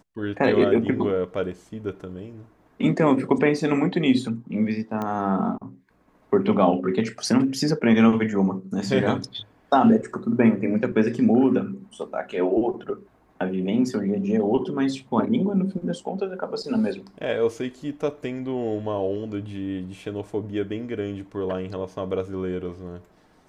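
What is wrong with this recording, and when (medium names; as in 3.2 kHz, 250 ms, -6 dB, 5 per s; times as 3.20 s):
5.02 s: pop -17 dBFS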